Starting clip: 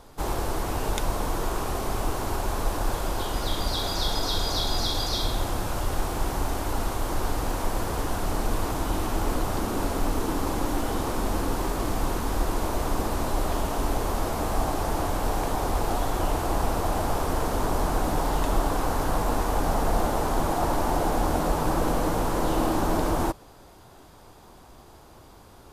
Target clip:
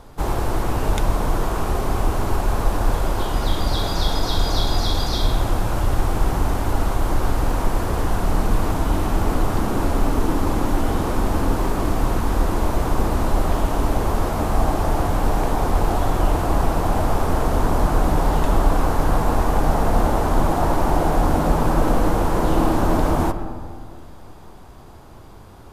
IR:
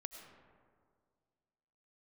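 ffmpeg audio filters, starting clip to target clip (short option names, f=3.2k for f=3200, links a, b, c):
-filter_complex "[0:a]asplit=2[a][b];[b]bass=f=250:g=12,treble=f=4k:g=-12[c];[1:a]atrim=start_sample=2205,lowshelf=f=230:g=-7[d];[c][d]afir=irnorm=-1:irlink=0,volume=6dB[e];[a][e]amix=inputs=2:normalize=0,volume=-2dB"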